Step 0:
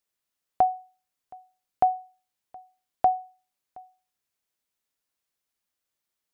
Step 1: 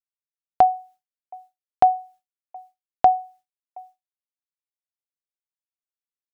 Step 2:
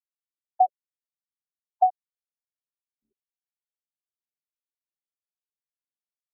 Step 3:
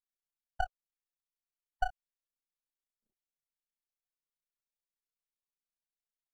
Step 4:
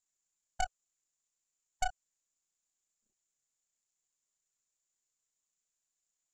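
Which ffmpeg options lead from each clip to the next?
-af "agate=range=0.0224:threshold=0.00316:ratio=3:detection=peak,volume=2"
-af "afftfilt=real='re*gte(hypot(re,im),1.41)':imag='im*gte(hypot(re,im),1.41)':win_size=1024:overlap=0.75,bass=f=250:g=-10,treble=f=4000:g=2,afftfilt=real='re*lt(b*sr/1024,270*pow(2100/270,0.5+0.5*sin(2*PI*2.2*pts/sr)))':imag='im*lt(b*sr/1024,270*pow(2100/270,0.5+0.5*sin(2*PI*2.2*pts/sr)))':win_size=1024:overlap=0.75,volume=0.668"
-af "acompressor=threshold=0.0891:ratio=6,aeval=exprs='max(val(0),0)':c=same,tremolo=f=30:d=0.947"
-filter_complex "[0:a]asplit=2[s0][s1];[s1]acrusher=bits=4:mix=0:aa=0.5,volume=0.376[s2];[s0][s2]amix=inputs=2:normalize=0,lowpass=f=7100:t=q:w=12,asoftclip=type=tanh:threshold=0.0631,volume=1.26"

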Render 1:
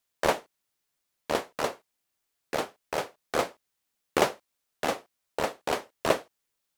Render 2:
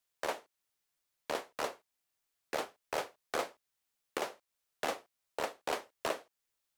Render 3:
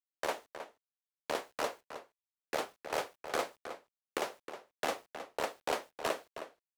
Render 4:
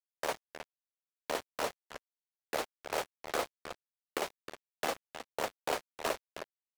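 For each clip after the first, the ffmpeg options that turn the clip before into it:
-filter_complex "[0:a]acrossover=split=180[s0][s1];[s0]acompressor=threshold=0.00251:ratio=6[s2];[s1]highpass=f=300:p=1[s3];[s2][s3]amix=inputs=2:normalize=0,alimiter=limit=0.133:level=0:latency=1:release=385,volume=0.668"
-filter_complex "[0:a]acrusher=bits=10:mix=0:aa=0.000001,asplit=2[s0][s1];[s1]adelay=314.9,volume=0.316,highshelf=f=4000:g=-7.08[s2];[s0][s2]amix=inputs=2:normalize=0,volume=1.12"
-af "acrusher=bits=5:mix=0:aa=0.5"

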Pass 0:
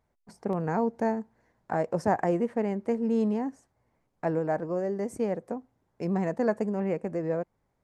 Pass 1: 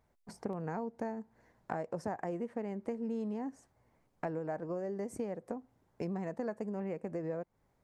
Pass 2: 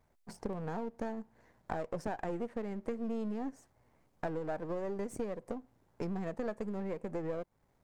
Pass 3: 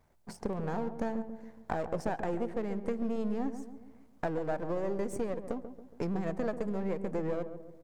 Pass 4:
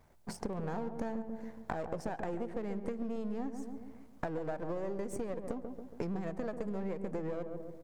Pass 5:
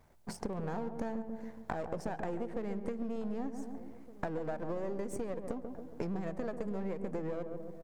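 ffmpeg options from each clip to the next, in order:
-af "acompressor=threshold=0.0141:ratio=5,volume=1.19"
-af "aeval=exprs='if(lt(val(0),0),0.447*val(0),val(0))':c=same,volume=1.5"
-filter_complex "[0:a]asplit=2[s0][s1];[s1]adelay=139,lowpass=f=840:p=1,volume=0.376,asplit=2[s2][s3];[s3]adelay=139,lowpass=f=840:p=1,volume=0.54,asplit=2[s4][s5];[s5]adelay=139,lowpass=f=840:p=1,volume=0.54,asplit=2[s6][s7];[s7]adelay=139,lowpass=f=840:p=1,volume=0.54,asplit=2[s8][s9];[s9]adelay=139,lowpass=f=840:p=1,volume=0.54,asplit=2[s10][s11];[s11]adelay=139,lowpass=f=840:p=1,volume=0.54[s12];[s0][s2][s4][s6][s8][s10][s12]amix=inputs=7:normalize=0,volume=1.5"
-af "acompressor=threshold=0.0126:ratio=6,volume=1.58"
-filter_complex "[0:a]asplit=2[s0][s1];[s1]adelay=1516,volume=0.141,highshelf=f=4000:g=-34.1[s2];[s0][s2]amix=inputs=2:normalize=0"

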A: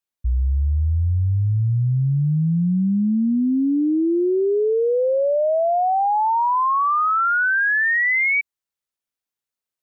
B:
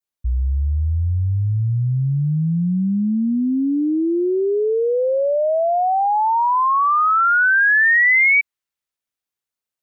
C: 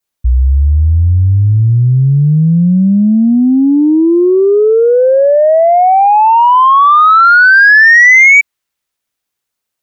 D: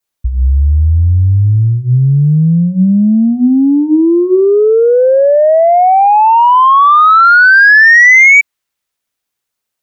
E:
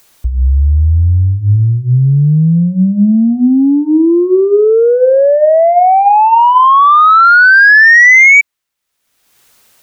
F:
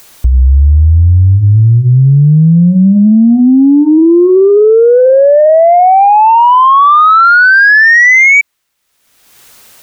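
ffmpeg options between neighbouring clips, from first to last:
-af "adynamicequalizer=threshold=0.02:dfrequency=2100:dqfactor=0.76:tfrequency=2100:tqfactor=0.76:attack=5:release=100:ratio=0.375:range=2.5:mode=boostabove:tftype=bell"
-af "acontrast=87,volume=1.58"
-af "bandreject=f=60:t=h:w=6,bandreject=f=120:t=h:w=6,bandreject=f=180:t=h:w=6,bandreject=f=240:t=h:w=6,bandreject=f=300:t=h:w=6,bandreject=f=360:t=h:w=6"
-af "bandreject=f=98.78:t=h:w=4,bandreject=f=197.56:t=h:w=4,bandreject=f=296.34:t=h:w=4,bandreject=f=395.12:t=h:w=4,bandreject=f=493.9:t=h:w=4,bandreject=f=592.68:t=h:w=4,bandreject=f=691.46:t=h:w=4,bandreject=f=790.24:t=h:w=4,bandreject=f=889.02:t=h:w=4,bandreject=f=987.8:t=h:w=4,acompressor=mode=upward:threshold=0.0447:ratio=2.5"
-af "alimiter=level_in=3.55:limit=0.891:release=50:level=0:latency=1,volume=0.891"

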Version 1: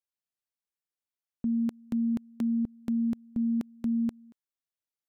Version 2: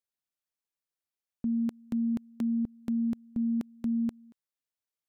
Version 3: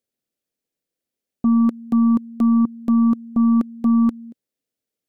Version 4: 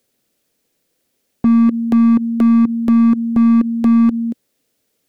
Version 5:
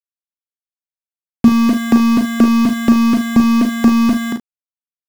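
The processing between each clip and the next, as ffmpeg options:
-af "acontrast=49,volume=0.447"
-af "equalizer=f=125:t=o:w=1:g=4,equalizer=f=250:t=o:w=1:g=10,equalizer=f=500:t=o:w=1:g=10,equalizer=f=1000:t=o:w=1:g=-8,aeval=exprs='0.224*(cos(1*acos(clip(val(0)/0.224,-1,1)))-cos(1*PI/2))+0.00501*(cos(4*acos(clip(val(0)/0.224,-1,1)))-cos(4*PI/2))+0.0251*(cos(5*acos(clip(val(0)/0.224,-1,1)))-cos(5*PI/2))':c=same,volume=1.19"
-filter_complex "[0:a]acrossover=split=360[s0][s1];[s1]asoftclip=type=hard:threshold=0.0376[s2];[s0][s2]amix=inputs=2:normalize=0,alimiter=level_in=14.1:limit=0.891:release=50:level=0:latency=1,volume=0.531"
-filter_complex "[0:a]aeval=exprs='val(0)*gte(abs(val(0)),0.0596)':c=same,asplit=2[s0][s1];[s1]aecho=0:1:37|50|74:0.473|0.299|0.168[s2];[s0][s2]amix=inputs=2:normalize=0,volume=1.88"

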